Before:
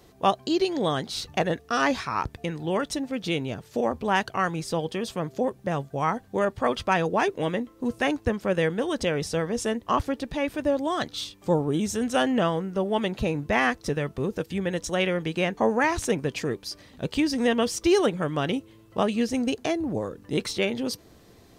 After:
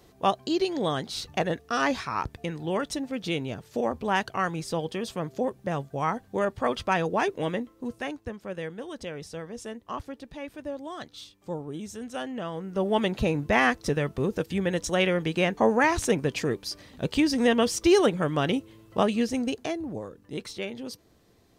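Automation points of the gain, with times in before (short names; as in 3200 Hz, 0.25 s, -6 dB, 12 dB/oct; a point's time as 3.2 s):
7.57 s -2 dB
8.22 s -11 dB
12.44 s -11 dB
12.86 s +1 dB
19 s +1 dB
20.22 s -8.5 dB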